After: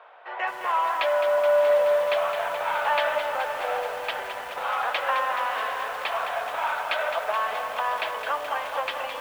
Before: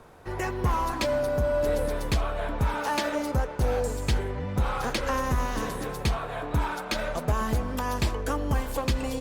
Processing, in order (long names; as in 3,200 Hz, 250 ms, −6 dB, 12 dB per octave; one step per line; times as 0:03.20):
Chebyshev band-pass filter 620–3,200 Hz, order 3
on a send: feedback delay with all-pass diffusion 644 ms, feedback 58%, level −13 dB
on the sum: feedback echo at a low word length 213 ms, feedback 80%, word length 8 bits, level −8 dB
level +5.5 dB